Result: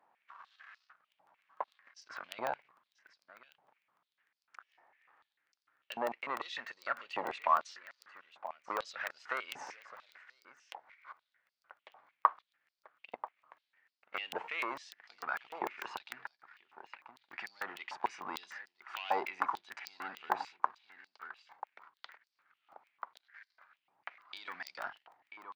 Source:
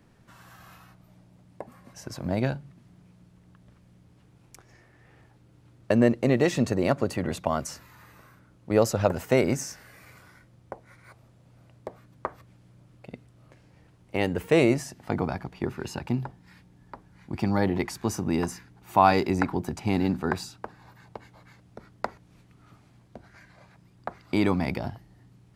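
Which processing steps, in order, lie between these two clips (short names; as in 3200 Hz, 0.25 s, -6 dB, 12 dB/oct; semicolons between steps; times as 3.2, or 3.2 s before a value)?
in parallel at -2 dB: limiter -13.5 dBFS, peak gain reduction 7.5 dB; on the sum: sample leveller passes 2; compressor 4:1, threshold -17 dBFS, peak gain reduction 8.5 dB; tape spacing loss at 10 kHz 40 dB; on a send: echo 0.987 s -15.5 dB; on the sum: crackling interface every 0.15 s, samples 64, zero, from 0.97; stepped high-pass 6.7 Hz 850–4800 Hz; gain -6.5 dB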